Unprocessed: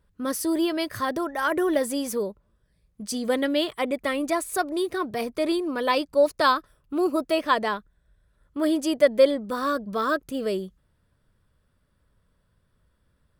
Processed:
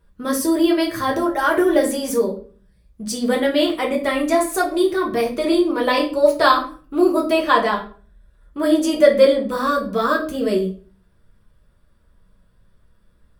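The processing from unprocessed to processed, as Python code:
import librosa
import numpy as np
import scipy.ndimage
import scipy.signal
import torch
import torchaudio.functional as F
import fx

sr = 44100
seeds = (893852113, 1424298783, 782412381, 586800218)

y = fx.room_shoebox(x, sr, seeds[0], volume_m3=31.0, walls='mixed', distance_m=0.63)
y = F.gain(torch.from_numpy(y), 2.5).numpy()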